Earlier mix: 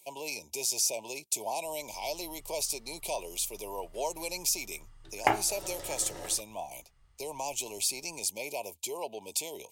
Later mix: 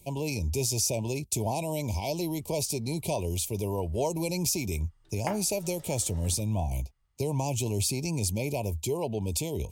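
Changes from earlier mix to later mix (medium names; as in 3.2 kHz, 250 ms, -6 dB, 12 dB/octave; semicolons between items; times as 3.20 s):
speech: remove high-pass 660 Hz 12 dB/octave; background -10.5 dB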